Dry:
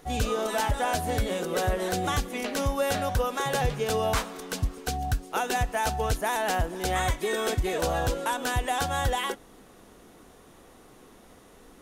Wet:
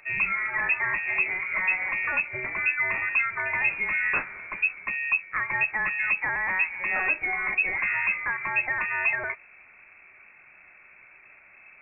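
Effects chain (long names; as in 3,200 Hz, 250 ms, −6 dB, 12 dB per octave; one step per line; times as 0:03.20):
voice inversion scrambler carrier 2,600 Hz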